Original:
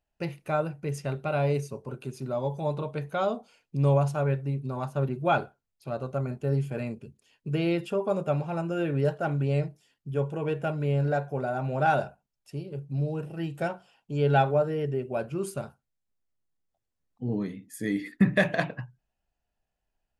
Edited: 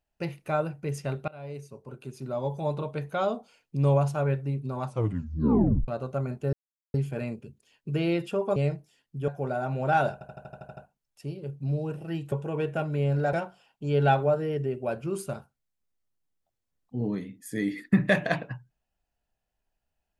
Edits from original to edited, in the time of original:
1.28–2.54 s: fade in, from -23.5 dB
4.85 s: tape stop 1.03 s
6.53 s: insert silence 0.41 s
8.15–9.48 s: delete
10.20–11.21 s: move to 13.61 s
12.06 s: stutter 0.08 s, 9 plays

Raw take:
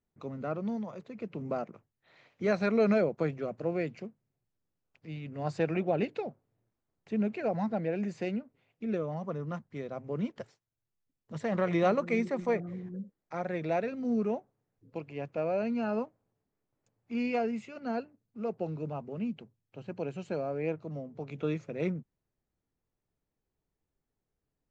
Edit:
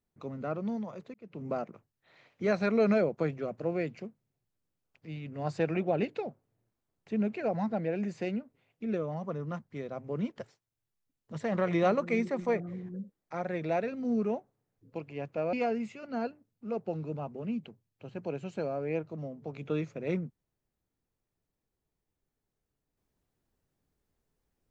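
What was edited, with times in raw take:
1.14–1.49 s: fade in
15.53–17.26 s: delete

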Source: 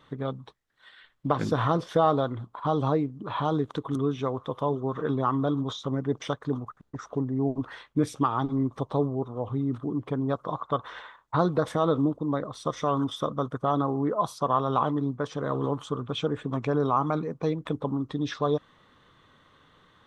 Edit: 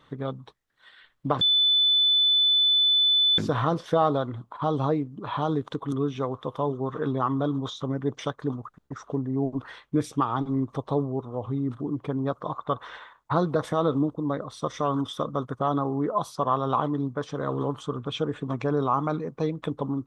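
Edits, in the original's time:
1.41 s: add tone 3.5 kHz -17.5 dBFS 1.97 s

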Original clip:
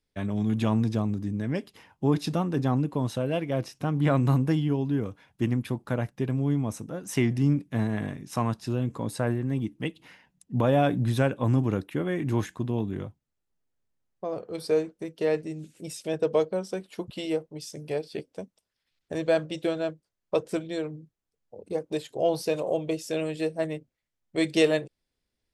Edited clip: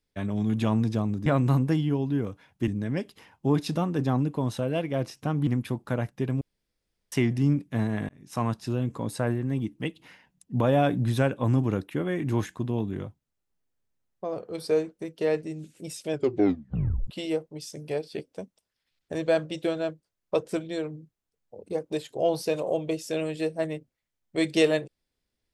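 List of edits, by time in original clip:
4.05–5.47 s: move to 1.26 s
6.41–7.12 s: room tone
8.09–8.44 s: fade in
16.10 s: tape stop 0.97 s

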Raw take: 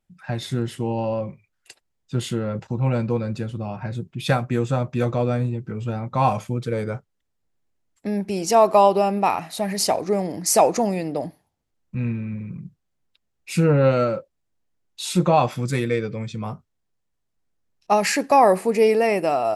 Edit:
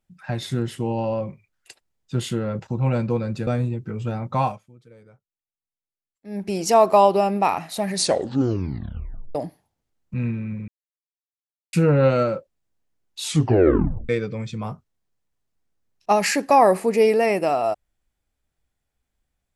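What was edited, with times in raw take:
3.47–5.28 s: delete
6.17–8.28 s: dip -24 dB, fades 0.23 s
9.70 s: tape stop 1.46 s
12.49–13.54 s: mute
15.07 s: tape stop 0.83 s

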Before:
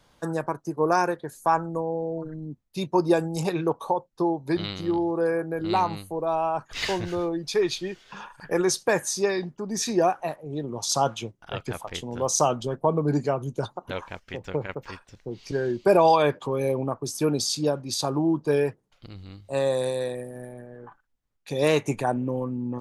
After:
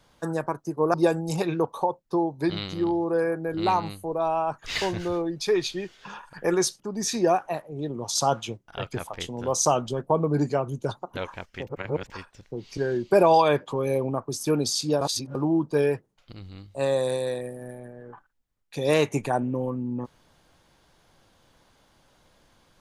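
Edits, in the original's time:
0.94–3.01 s: delete
8.87–9.54 s: delete
14.41–14.84 s: reverse
17.75–18.09 s: reverse

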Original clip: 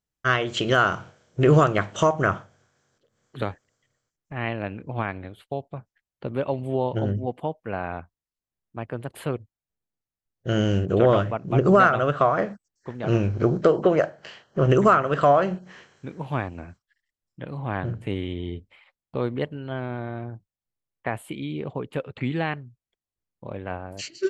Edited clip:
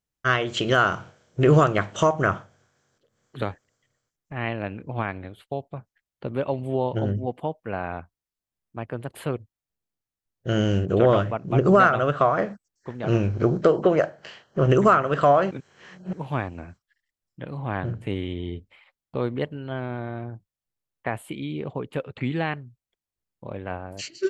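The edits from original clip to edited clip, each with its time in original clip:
15.51–16.13 s: reverse

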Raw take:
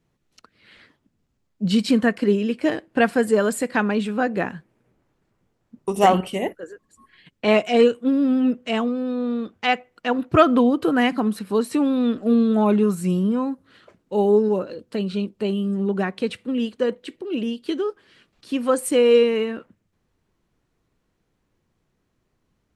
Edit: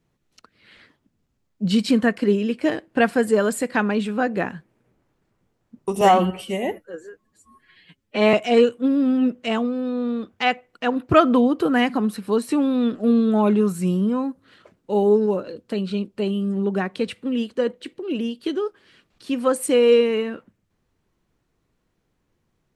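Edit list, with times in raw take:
6.01–7.56 s: stretch 1.5×

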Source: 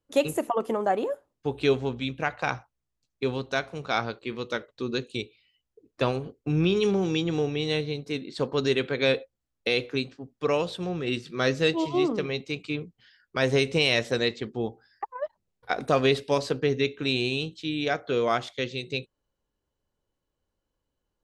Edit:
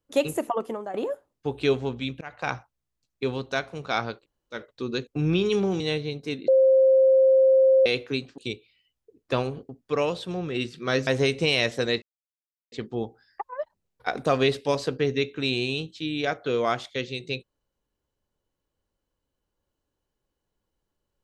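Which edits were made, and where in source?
0.51–0.94 s: fade out, to -14 dB
2.21–2.51 s: fade in, from -21.5 dB
4.21–4.55 s: room tone, crossfade 0.10 s
5.07–6.38 s: move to 10.21 s
7.11–7.63 s: delete
8.31–9.69 s: bleep 529 Hz -14 dBFS
11.59–13.40 s: delete
14.35 s: insert silence 0.70 s

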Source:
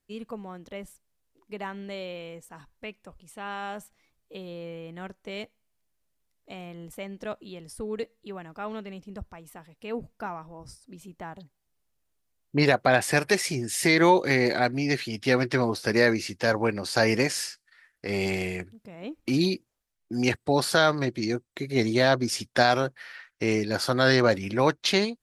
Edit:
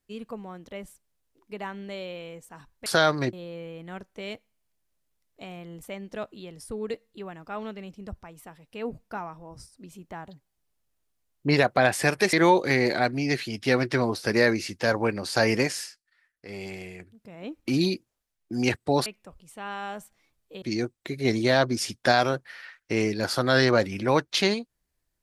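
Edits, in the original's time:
2.86–4.42 s: swap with 20.66–21.13 s
13.42–13.93 s: delete
17.22–18.94 s: dip -10 dB, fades 0.36 s

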